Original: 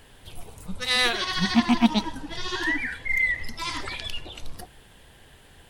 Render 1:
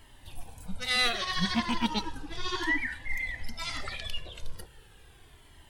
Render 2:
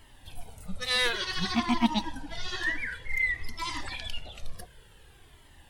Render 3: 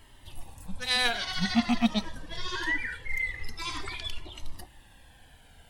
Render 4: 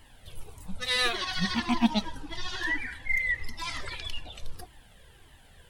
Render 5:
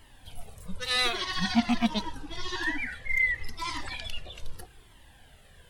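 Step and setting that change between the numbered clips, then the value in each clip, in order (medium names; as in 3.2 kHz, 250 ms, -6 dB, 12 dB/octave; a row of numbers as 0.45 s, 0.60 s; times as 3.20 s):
Shepard-style flanger, rate: 0.36 Hz, 0.55 Hz, 0.23 Hz, 1.7 Hz, 0.81 Hz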